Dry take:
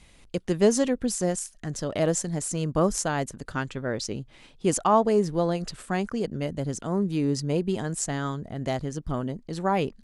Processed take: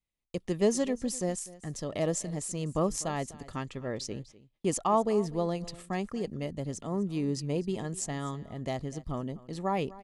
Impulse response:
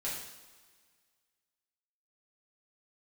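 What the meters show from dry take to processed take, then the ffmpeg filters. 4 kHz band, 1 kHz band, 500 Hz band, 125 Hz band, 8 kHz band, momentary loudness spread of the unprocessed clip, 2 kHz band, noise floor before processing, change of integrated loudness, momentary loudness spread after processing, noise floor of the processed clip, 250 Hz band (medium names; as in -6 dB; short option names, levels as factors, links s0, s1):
-5.5 dB, -5.5 dB, -5.5 dB, -5.5 dB, -5.5 dB, 11 LU, -8.0 dB, -55 dBFS, -5.5 dB, 11 LU, -68 dBFS, -5.5 dB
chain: -af "agate=range=0.0282:threshold=0.00631:ratio=16:detection=peak,asuperstop=centerf=1500:order=4:qfactor=6.1,aecho=1:1:249:0.112,volume=0.531"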